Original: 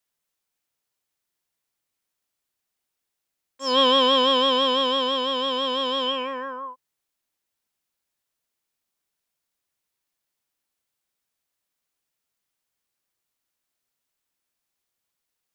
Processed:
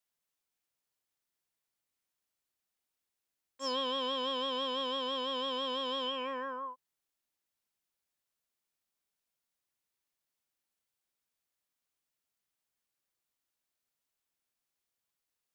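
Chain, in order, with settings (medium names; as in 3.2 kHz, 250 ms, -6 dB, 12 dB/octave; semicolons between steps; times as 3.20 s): compression 6:1, threshold -26 dBFS, peak gain reduction 11 dB; trim -6 dB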